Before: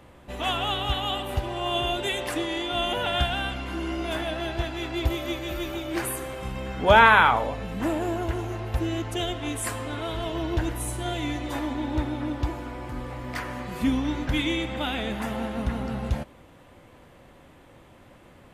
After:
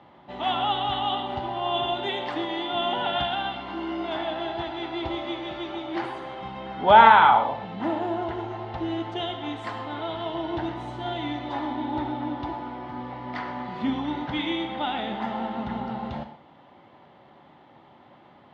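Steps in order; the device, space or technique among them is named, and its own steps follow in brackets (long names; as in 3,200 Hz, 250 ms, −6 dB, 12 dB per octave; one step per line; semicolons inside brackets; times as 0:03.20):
kitchen radio (loudspeaker in its box 190–3,700 Hz, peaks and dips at 280 Hz −4 dB, 490 Hz −9 dB, 840 Hz +6 dB, 1,600 Hz −6 dB, 2,500 Hz −9 dB)
notch filter 1,100 Hz, Q 21
reverb whose tail is shaped and stops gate 150 ms flat, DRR 7.5 dB
level +1.5 dB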